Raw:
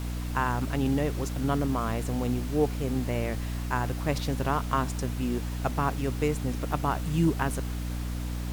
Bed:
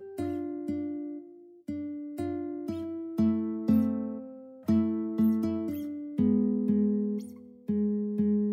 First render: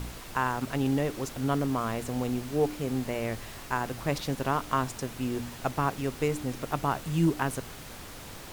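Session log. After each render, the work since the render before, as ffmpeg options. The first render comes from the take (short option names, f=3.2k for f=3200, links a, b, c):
-af "bandreject=f=60:t=h:w=4,bandreject=f=120:t=h:w=4,bandreject=f=180:t=h:w=4,bandreject=f=240:t=h:w=4,bandreject=f=300:t=h:w=4"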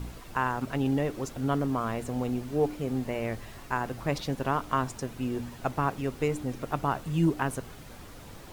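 -af "afftdn=nr=7:nf=-44"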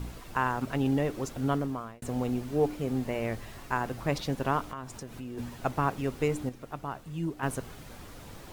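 -filter_complex "[0:a]asplit=3[a][b][c];[a]afade=t=out:st=4.69:d=0.02[d];[b]acompressor=threshold=-39dB:ratio=3:attack=3.2:release=140:knee=1:detection=peak,afade=t=in:st=4.69:d=0.02,afade=t=out:st=5.37:d=0.02[e];[c]afade=t=in:st=5.37:d=0.02[f];[d][e][f]amix=inputs=3:normalize=0,asplit=4[g][h][i][j];[g]atrim=end=2.02,asetpts=PTS-STARTPTS,afade=t=out:st=1.49:d=0.53[k];[h]atrim=start=2.02:end=6.492,asetpts=PTS-STARTPTS,afade=t=in:d=0.004:c=hsin[l];[i]atrim=start=6.488:end=7.432,asetpts=PTS-STARTPTS,volume=-8.5dB[m];[j]atrim=start=7.428[n];[k][l]concat=n=2:v=0:a=1[o];[o][m]acrossfade=d=0.004:c1=hsin:c2=hsin[p];[p][n]acrossfade=d=0.004:c1=hsin:c2=hsin"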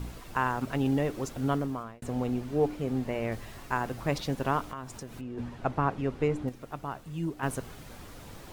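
-filter_complex "[0:a]asettb=1/sr,asplit=3[a][b][c];[a]atrim=end=1.834[d];[b]atrim=start=1.83:end=3.32,asetpts=PTS-STARTPTS,afade=t=in:d=0.004:c=qsin,afade=t=out:st=1.486:d=0.004:c=qsin,highshelf=f=5.6k:g=-6[e];[c]atrim=start=3.316[f];[d][e]acrossfade=d=0.004:c1=hsin:c2=qsin[g];[g][f]acrossfade=d=0.004:c1=qsin:c2=hsin,asettb=1/sr,asplit=3[h][i][j];[h]atrim=end=5.214[k];[i]atrim=start=5.21:end=6.48,asetpts=PTS-STARTPTS,afade=t=in:d=0.004:c=qsin,afade=t=out:st=1.266:d=0.004:c=qsin,aemphasis=mode=reproduction:type=75fm[l];[j]atrim=start=6.476[m];[k][l]acrossfade=d=0.004:c1=hsin:c2=qsin[n];[n][m]acrossfade=d=0.004:c1=qsin:c2=hsin"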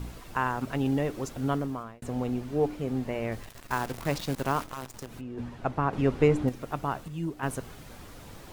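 -filter_complex "[0:a]asettb=1/sr,asplit=3[a][b][c];[a]atrim=end=3.434[d];[b]atrim=start=3.43:end=5.07,asetpts=PTS-STARTPTS,afade=t=in:d=0.004:c=qsin,afade=t=out:st=1.636:d=0.004:c=qsin,acrusher=bits=7:dc=4:mix=0:aa=0.000001[e];[c]atrim=start=5.066[f];[d][e]acrossfade=d=0.004:c1=hsin:c2=qsin[g];[g][f]acrossfade=d=0.004:c1=qsin:c2=hsin,asplit=3[h][i][j];[h]atrim=end=5.932[k];[i]atrim=start=5.928:end=7.082,asetpts=PTS-STARTPTS,volume=6dB[l];[j]atrim=start=7.078[m];[k][l]acrossfade=d=0.004:c1=hsin:c2=hsin[n];[n][m]acrossfade=d=0.004:c1=hsin:c2=hsin"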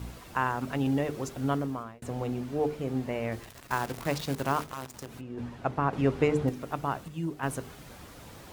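-af "highpass=46,bandreject=f=50:t=h:w=6,bandreject=f=100:t=h:w=6,bandreject=f=150:t=h:w=6,bandreject=f=200:t=h:w=6,bandreject=f=250:t=h:w=6,bandreject=f=300:t=h:w=6,bandreject=f=350:t=h:w=6,bandreject=f=400:t=h:w=6,bandreject=f=450:t=h:w=6"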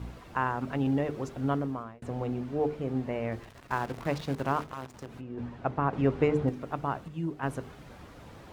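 -af "lowpass=f=2.3k:p=1"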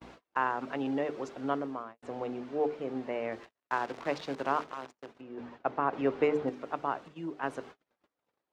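-filter_complex "[0:a]agate=range=-37dB:threshold=-43dB:ratio=16:detection=peak,acrossover=split=260 7400:gain=0.1 1 0.141[a][b][c];[a][b][c]amix=inputs=3:normalize=0"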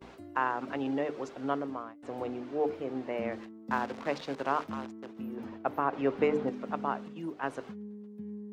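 -filter_complex "[1:a]volume=-15.5dB[a];[0:a][a]amix=inputs=2:normalize=0"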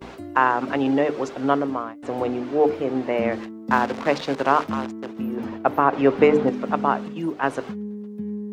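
-af "volume=11.5dB"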